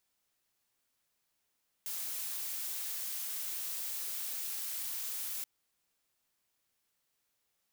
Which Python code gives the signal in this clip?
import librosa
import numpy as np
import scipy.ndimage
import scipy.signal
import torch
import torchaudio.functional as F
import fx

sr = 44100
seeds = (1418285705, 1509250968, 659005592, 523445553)

y = fx.noise_colour(sr, seeds[0], length_s=3.58, colour='blue', level_db=-38.5)